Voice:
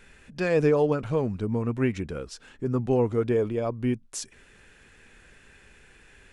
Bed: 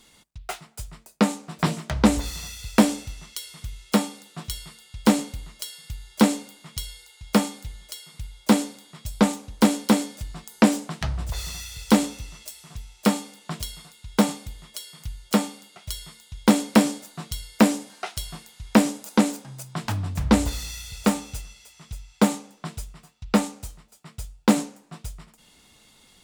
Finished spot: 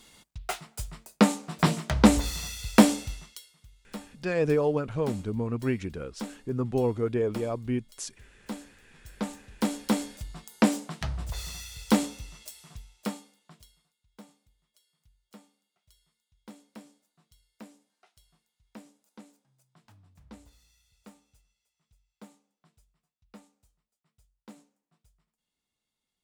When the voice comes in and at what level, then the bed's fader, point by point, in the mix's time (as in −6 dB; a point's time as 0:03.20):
3.85 s, −3.0 dB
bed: 0:03.14 0 dB
0:03.55 −19.5 dB
0:08.67 −19.5 dB
0:10.12 −5 dB
0:12.66 −5 dB
0:14.02 −31 dB